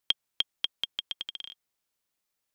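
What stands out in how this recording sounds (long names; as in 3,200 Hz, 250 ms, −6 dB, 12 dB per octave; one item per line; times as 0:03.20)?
background noise floor −83 dBFS
spectral slope −2.0 dB per octave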